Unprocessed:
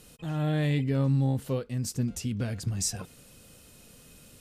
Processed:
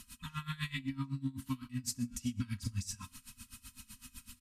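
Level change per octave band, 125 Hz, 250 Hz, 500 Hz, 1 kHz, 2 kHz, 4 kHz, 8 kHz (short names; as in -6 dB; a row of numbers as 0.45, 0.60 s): -12.5 dB, -8.5 dB, under -30 dB, -7.5 dB, -4.5 dB, -5.0 dB, -8.0 dB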